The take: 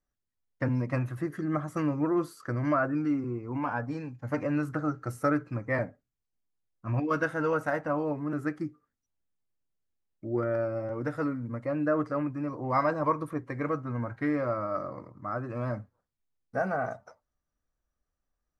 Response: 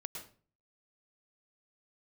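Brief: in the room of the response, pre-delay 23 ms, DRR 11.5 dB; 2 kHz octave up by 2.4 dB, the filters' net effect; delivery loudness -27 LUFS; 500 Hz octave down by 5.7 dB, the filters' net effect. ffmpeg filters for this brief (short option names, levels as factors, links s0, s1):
-filter_complex "[0:a]equalizer=f=500:t=o:g=-7.5,equalizer=f=2000:t=o:g=4,asplit=2[s0][s1];[1:a]atrim=start_sample=2205,adelay=23[s2];[s1][s2]afir=irnorm=-1:irlink=0,volume=0.335[s3];[s0][s3]amix=inputs=2:normalize=0,volume=1.88"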